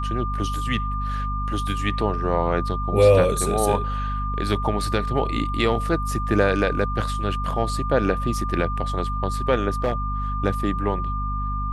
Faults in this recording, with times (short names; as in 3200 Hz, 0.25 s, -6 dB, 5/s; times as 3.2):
hum 50 Hz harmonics 5 -27 dBFS
tone 1200 Hz -28 dBFS
9.84–9.93 clipped -16 dBFS